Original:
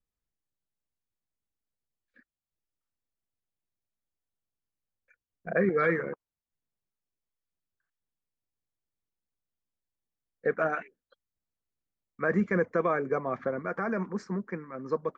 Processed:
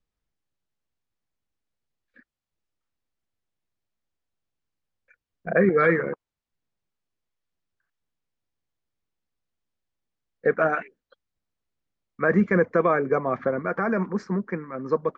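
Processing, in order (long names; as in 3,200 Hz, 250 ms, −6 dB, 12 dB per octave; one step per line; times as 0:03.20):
high-frequency loss of the air 84 metres
level +6.5 dB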